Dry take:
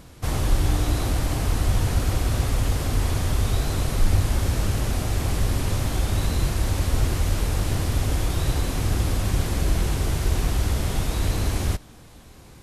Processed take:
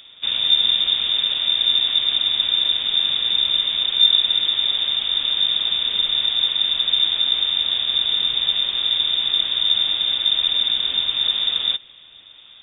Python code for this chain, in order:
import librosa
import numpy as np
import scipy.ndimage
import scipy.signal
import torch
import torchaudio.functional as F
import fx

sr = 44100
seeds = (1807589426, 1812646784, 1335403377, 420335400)

y = fx.freq_invert(x, sr, carrier_hz=3600)